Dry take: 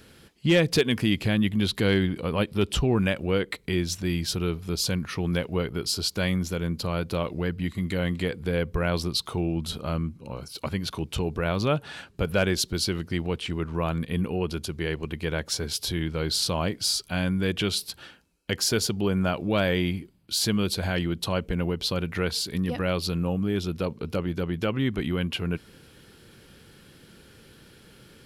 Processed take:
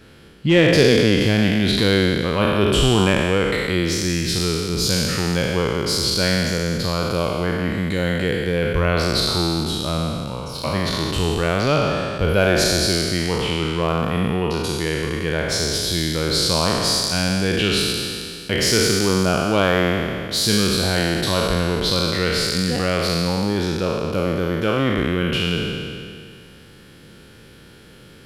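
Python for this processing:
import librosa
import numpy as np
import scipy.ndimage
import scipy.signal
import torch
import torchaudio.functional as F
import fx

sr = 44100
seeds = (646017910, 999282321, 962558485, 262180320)

y = fx.spec_trails(x, sr, decay_s=2.29)
y = fx.high_shelf(y, sr, hz=5400.0, db=fx.steps((0.0, -10.0), (1.18, -4.5)))
y = F.gain(torch.from_numpy(y), 3.5).numpy()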